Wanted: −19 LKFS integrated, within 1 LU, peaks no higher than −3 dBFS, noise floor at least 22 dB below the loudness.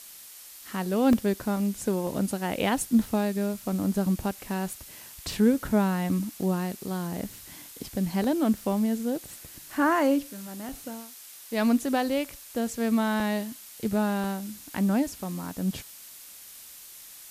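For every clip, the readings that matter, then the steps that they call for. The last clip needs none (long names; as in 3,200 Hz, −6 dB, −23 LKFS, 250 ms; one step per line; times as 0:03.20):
number of dropouts 7; longest dropout 1.7 ms; background noise floor −47 dBFS; target noise floor −50 dBFS; integrated loudness −27.5 LKFS; sample peak −10.5 dBFS; target loudness −19.0 LKFS
→ repair the gap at 0:01.13/0:02.07/0:06.43/0:08.24/0:10.69/0:13.20/0:14.24, 1.7 ms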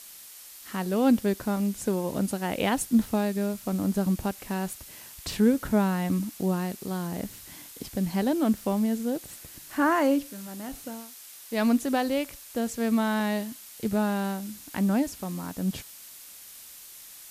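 number of dropouts 0; background noise floor −47 dBFS; target noise floor −50 dBFS
→ noise reduction from a noise print 6 dB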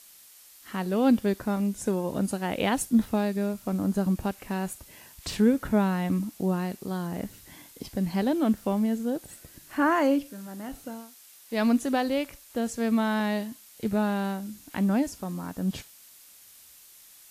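background noise floor −53 dBFS; integrated loudness −27.5 LKFS; sample peak −10.5 dBFS; target loudness −19.0 LKFS
→ level +8.5 dB
brickwall limiter −3 dBFS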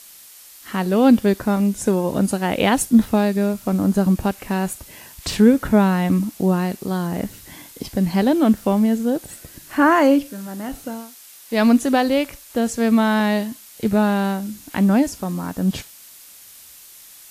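integrated loudness −19.0 LKFS; sample peak −3.0 dBFS; background noise floor −44 dBFS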